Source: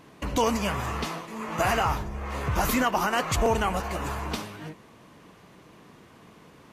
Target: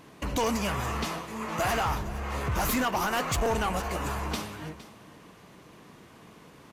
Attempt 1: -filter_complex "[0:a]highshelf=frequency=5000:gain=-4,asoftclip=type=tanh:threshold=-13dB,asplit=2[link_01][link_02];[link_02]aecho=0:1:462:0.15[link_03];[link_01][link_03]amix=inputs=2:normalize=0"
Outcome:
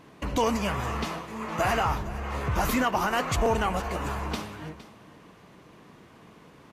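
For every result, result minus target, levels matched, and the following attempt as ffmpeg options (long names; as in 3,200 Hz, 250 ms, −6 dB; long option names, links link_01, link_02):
soft clipping: distortion −12 dB; 8,000 Hz band −4.0 dB
-filter_complex "[0:a]highshelf=frequency=5000:gain=-4,asoftclip=type=tanh:threshold=-21.5dB,asplit=2[link_01][link_02];[link_02]aecho=0:1:462:0.15[link_03];[link_01][link_03]amix=inputs=2:normalize=0"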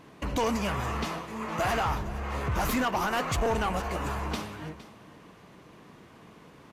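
8,000 Hz band −4.0 dB
-filter_complex "[0:a]highshelf=frequency=5000:gain=3,asoftclip=type=tanh:threshold=-21.5dB,asplit=2[link_01][link_02];[link_02]aecho=0:1:462:0.15[link_03];[link_01][link_03]amix=inputs=2:normalize=0"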